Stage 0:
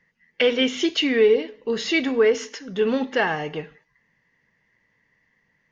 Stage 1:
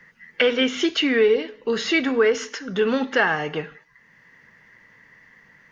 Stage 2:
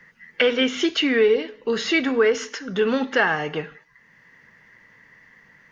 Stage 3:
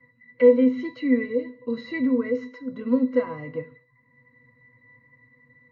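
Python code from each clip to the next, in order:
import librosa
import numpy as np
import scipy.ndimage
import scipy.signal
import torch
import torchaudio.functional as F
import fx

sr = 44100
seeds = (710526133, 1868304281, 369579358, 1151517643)

y1 = fx.peak_eq(x, sr, hz=1400.0, db=8.0, octaves=0.63)
y1 = fx.band_squash(y1, sr, depth_pct=40)
y2 = y1
y3 = fx.low_shelf(y2, sr, hz=470.0, db=6.0)
y3 = fx.octave_resonator(y3, sr, note='B', decay_s=0.15)
y3 = y3 * 10.0 ** (5.0 / 20.0)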